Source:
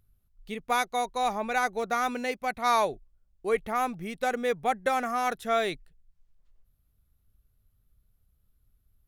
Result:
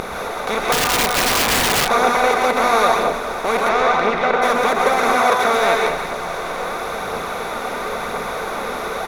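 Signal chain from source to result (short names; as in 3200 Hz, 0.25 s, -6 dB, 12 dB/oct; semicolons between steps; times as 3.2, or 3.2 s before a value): per-bin compression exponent 0.2; reverb RT60 0.70 s, pre-delay 0.112 s, DRR -1 dB; phaser 0.98 Hz, delay 4.2 ms, feedback 28%; 3.68–4.41 LPF 6200 Hz -> 2900 Hz 12 dB/oct; feedback echo 0.206 s, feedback 57%, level -15.5 dB; 0.72–1.89 wrapped overs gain 11.5 dB; 5.15–5.57 HPF 59 Hz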